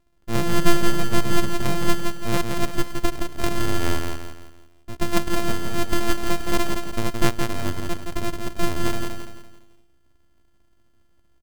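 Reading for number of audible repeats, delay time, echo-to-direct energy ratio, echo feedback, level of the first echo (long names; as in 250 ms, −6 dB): 4, 169 ms, −4.0 dB, 40%, −5.0 dB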